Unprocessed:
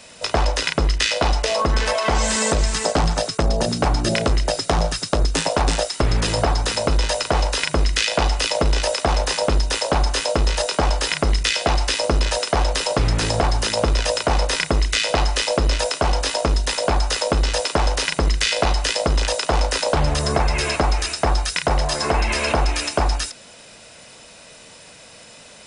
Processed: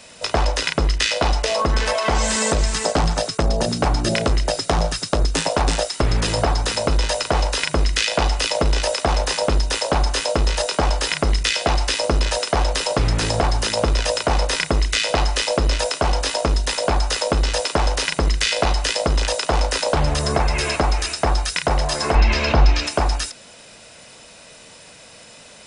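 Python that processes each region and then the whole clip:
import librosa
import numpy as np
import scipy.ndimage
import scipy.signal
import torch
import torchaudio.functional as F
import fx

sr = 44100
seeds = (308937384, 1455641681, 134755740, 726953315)

y = fx.chain(x, sr, fx.lowpass(hz=5200.0, slope=24),
    fx.bass_treble(bass_db=7, treble_db=5), at=(22.15, 22.87))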